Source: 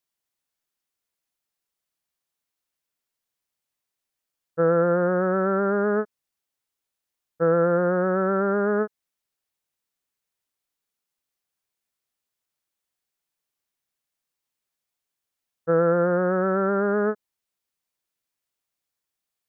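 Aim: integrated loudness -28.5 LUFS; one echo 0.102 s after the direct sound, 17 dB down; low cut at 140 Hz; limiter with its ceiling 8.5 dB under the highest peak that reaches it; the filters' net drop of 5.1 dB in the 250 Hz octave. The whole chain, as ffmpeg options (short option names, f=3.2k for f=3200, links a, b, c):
-af "highpass=140,equalizer=f=250:t=o:g=-7.5,alimiter=limit=-20.5dB:level=0:latency=1,aecho=1:1:102:0.141,volume=1.5dB"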